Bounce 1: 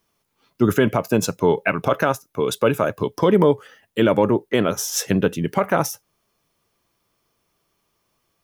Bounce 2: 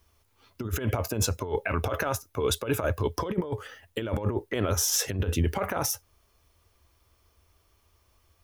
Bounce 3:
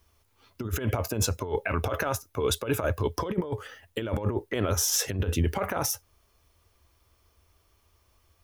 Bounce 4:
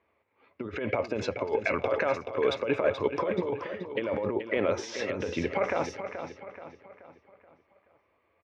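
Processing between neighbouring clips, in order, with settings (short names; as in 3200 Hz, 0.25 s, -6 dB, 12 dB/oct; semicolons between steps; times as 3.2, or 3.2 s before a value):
resonant low shelf 110 Hz +11.5 dB, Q 3; negative-ratio compressor -22 dBFS, ratio -0.5; limiter -13 dBFS, peak gain reduction 5 dB; gain -2.5 dB
nothing audible
speaker cabinet 220–3800 Hz, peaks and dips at 540 Hz +6 dB, 1400 Hz -4 dB, 2200 Hz +8 dB, 3200 Hz -6 dB; feedback echo 0.429 s, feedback 45%, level -9 dB; low-pass opened by the level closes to 2100 Hz, open at -26.5 dBFS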